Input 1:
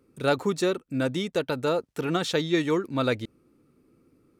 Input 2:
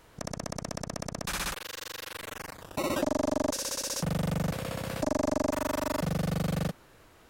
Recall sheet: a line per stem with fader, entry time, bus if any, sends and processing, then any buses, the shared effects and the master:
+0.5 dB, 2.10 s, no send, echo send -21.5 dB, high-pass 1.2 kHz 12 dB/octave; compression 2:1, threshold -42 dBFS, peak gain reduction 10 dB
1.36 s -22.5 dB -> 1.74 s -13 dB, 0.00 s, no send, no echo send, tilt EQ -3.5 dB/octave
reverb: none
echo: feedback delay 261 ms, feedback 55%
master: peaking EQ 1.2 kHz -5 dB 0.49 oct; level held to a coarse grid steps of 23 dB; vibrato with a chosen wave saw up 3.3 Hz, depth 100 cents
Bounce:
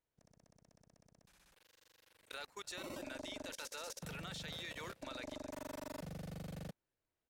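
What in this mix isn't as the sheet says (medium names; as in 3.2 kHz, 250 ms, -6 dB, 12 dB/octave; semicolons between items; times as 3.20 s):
stem 2: missing tilt EQ -3.5 dB/octave; master: missing vibrato with a chosen wave saw up 3.3 Hz, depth 100 cents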